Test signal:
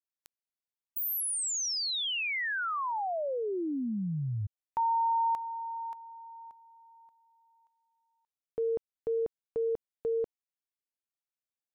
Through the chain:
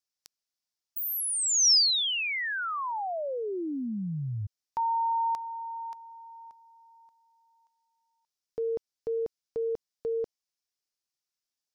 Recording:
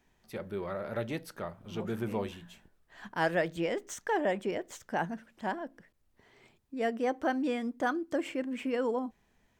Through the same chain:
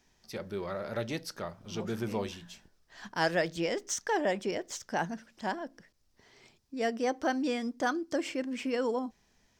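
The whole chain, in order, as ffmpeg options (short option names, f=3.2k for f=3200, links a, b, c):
-af "equalizer=f=5.3k:t=o:w=0.85:g=13"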